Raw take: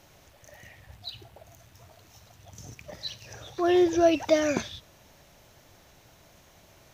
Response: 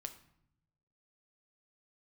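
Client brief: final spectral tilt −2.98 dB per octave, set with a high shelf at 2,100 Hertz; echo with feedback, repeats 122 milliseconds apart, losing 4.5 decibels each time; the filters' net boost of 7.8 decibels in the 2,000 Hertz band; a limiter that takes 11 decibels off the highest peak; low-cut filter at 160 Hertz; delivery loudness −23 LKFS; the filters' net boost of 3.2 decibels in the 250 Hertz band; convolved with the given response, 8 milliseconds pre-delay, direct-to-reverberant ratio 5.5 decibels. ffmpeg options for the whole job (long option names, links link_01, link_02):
-filter_complex "[0:a]highpass=160,equalizer=frequency=250:width_type=o:gain=5.5,equalizer=frequency=2000:width_type=o:gain=7.5,highshelf=frequency=2100:gain=3.5,alimiter=limit=-18.5dB:level=0:latency=1,aecho=1:1:122|244|366|488|610|732|854|976|1098:0.596|0.357|0.214|0.129|0.0772|0.0463|0.0278|0.0167|0.01,asplit=2[link_01][link_02];[1:a]atrim=start_sample=2205,adelay=8[link_03];[link_02][link_03]afir=irnorm=-1:irlink=0,volume=-2dB[link_04];[link_01][link_04]amix=inputs=2:normalize=0,volume=5dB"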